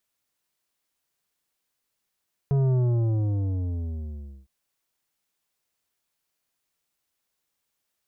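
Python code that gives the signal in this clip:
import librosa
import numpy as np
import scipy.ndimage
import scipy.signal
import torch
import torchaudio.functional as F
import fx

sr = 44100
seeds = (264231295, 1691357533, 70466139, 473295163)

y = fx.sub_drop(sr, level_db=-20, start_hz=140.0, length_s=1.96, drive_db=10.0, fade_s=1.75, end_hz=65.0)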